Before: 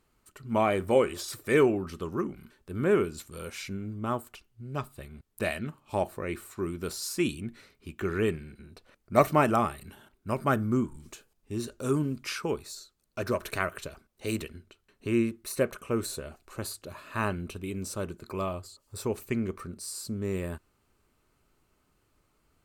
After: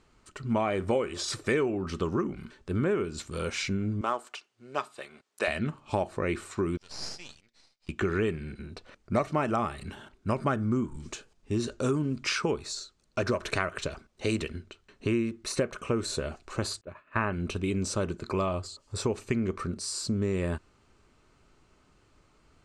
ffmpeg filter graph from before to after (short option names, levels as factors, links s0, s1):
-filter_complex "[0:a]asettb=1/sr,asplit=3[s0][s1][s2];[s0]atrim=end=4.014[s3];[s1]atrim=start=4.01:end=5.48,asetpts=PTS-STARTPTS,afade=t=in:d=0.004:c=qsin,afade=t=out:st=1.466:d=0.004:c=qsin,highpass=520,acrusher=bits=7:mode=log:mix=0:aa=0.000001[s4];[s2]atrim=start=5.476[s5];[s3][s4]acrossfade=d=0.004:c1=hsin:c2=qsin[s6];[s6][s5]acrossfade=d=0.004:c1=qsin:c2=hsin,asettb=1/sr,asplit=3[s7][s8][s9];[s7]atrim=end=6.774[s10];[s8]atrim=start=6.77:end=7.89,asetpts=PTS-STARTPTS,afade=t=in:d=0.004:c=qsin,afade=t=out:st=1.116:d=0.004:c=qsin,bandpass=f=5000:t=q:w=3.5,aeval=exprs='max(val(0),0)':c=same[s11];[s9]atrim=start=7.886[s12];[s10][s11]acrossfade=d=0.004:c1=hsin:c2=qsin[s13];[s13][s12]acrossfade=d=0.004:c1=qsin:c2=hsin,asettb=1/sr,asplit=3[s14][s15][s16];[s14]atrim=end=16.814[s17];[s15]atrim=start=16.81:end=17.33,asetpts=PTS-STARTPTS,afade=t=in:d=0.004:c=qsin,afade=t=out:st=0.516:d=0.004:c=qsin,highshelf=f=3200:t=q:w=1.5:g=-12.5,agate=range=0.0224:threshold=0.0178:ratio=3:release=100:detection=peak[s18];[s16]atrim=start=17.326[s19];[s17][s18]acrossfade=d=0.004:c1=hsin:c2=qsin[s20];[s20][s19]acrossfade=d=0.004:c1=qsin:c2=hsin,lowpass=f=7600:w=0.5412,lowpass=f=7600:w=1.3066,acompressor=threshold=0.0251:ratio=6,volume=2.37"